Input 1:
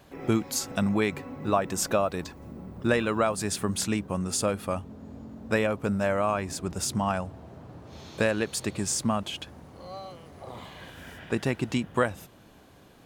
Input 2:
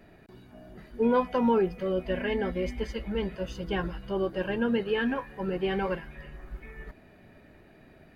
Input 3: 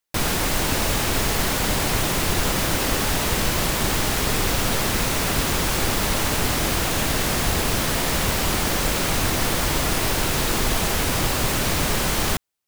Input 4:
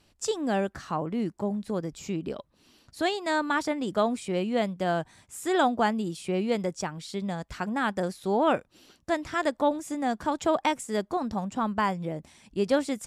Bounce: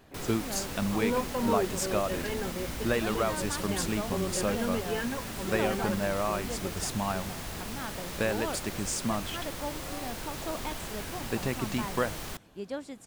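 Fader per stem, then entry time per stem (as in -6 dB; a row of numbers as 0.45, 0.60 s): -4.5, -5.5, -17.0, -12.5 dB; 0.00, 0.00, 0.00, 0.00 s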